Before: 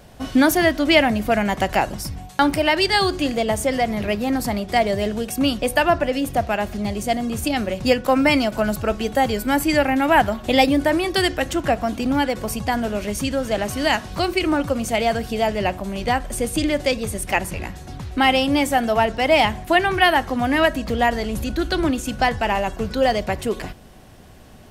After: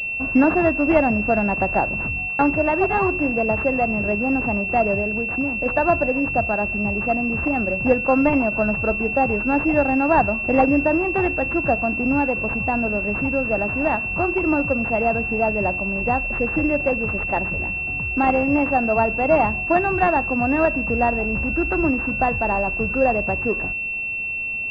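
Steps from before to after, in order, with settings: 5–5.66 compressor 5:1, threshold -22 dBFS, peak gain reduction 7.5 dB; pulse-width modulation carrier 2700 Hz

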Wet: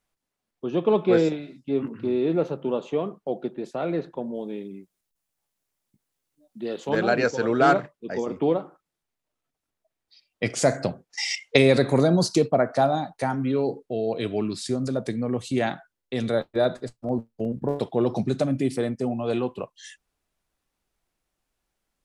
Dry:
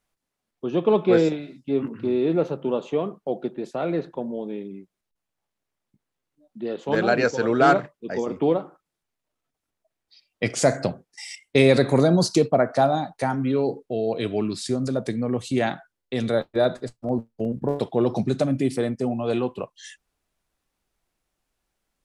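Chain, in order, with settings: 4.34–6.88 high shelf 6000 Hz -> 3900 Hz +11.5 dB; 11.11–11.57 spectral gain 460–7400 Hz +12 dB; gain -1.5 dB

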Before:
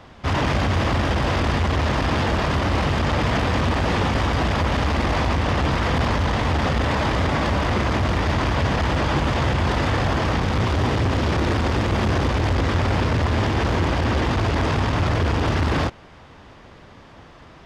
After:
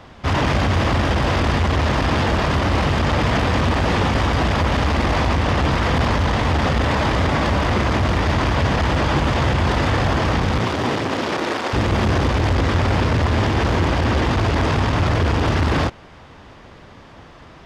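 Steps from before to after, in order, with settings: 10.58–11.72 HPF 120 Hz -> 430 Hz 12 dB/oct; gain +2.5 dB

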